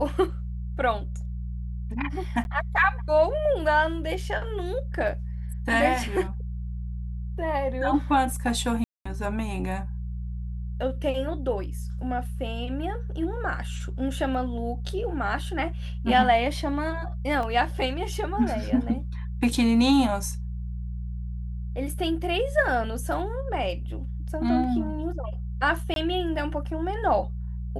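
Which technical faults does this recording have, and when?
hum 60 Hz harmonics 3 -32 dBFS
2.44–2.45 gap 11 ms
8.84–9.05 gap 0.215 s
17.43 gap 2.6 ms
25.94–25.96 gap 22 ms

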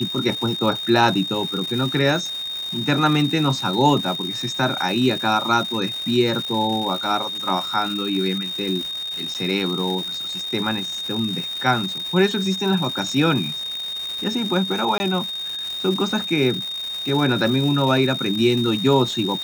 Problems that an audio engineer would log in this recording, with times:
crackle 460/s -27 dBFS
tone 3700 Hz -26 dBFS
9.34–9.35 gap 8.2 ms
14.98–15 gap 20 ms

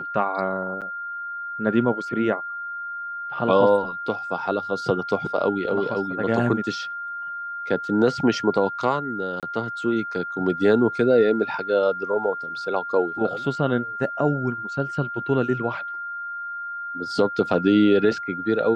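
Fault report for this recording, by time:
tone 1400 Hz -29 dBFS
0.81–0.82 gap 7.3 ms
9.4–9.43 gap 27 ms

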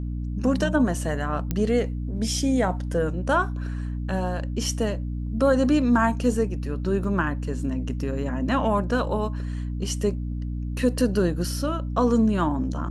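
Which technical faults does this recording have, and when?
hum 60 Hz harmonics 5 -29 dBFS
1.51 pop -12 dBFS
7.04 gap 4 ms

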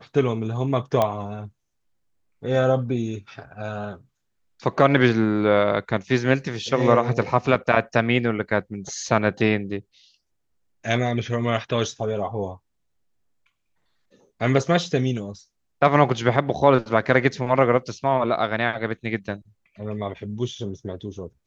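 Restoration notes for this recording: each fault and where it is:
1.02 pop -8 dBFS

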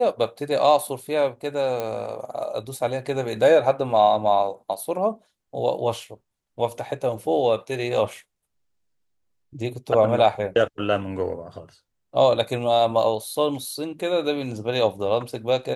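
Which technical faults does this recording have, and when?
1.8 pop -14 dBFS

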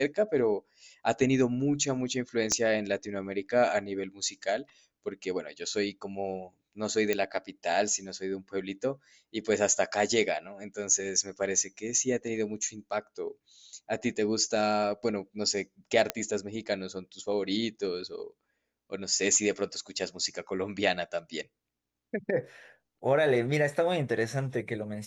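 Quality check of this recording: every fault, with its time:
2.52 pop -14 dBFS
7.13 pop -14 dBFS
16.1 pop -11 dBFS

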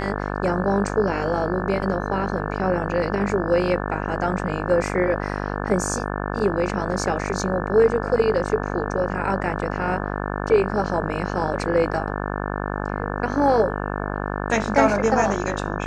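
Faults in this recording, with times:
buzz 50 Hz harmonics 35 -27 dBFS

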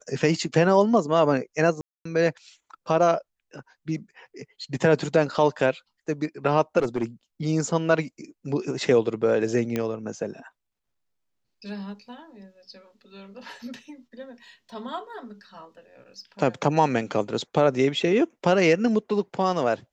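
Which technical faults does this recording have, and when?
1.81–2.05 gap 0.244 s
6.78–7.04 clipped -19 dBFS
9.76 pop -13 dBFS

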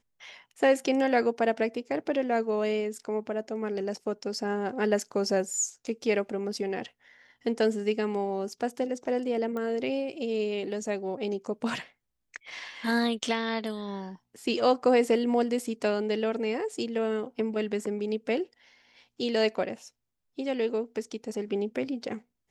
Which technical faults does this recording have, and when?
9.57 pop -23 dBFS

